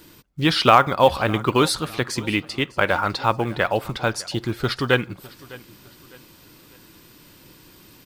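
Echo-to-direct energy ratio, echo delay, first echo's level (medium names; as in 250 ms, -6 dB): -20.5 dB, 605 ms, -21.0 dB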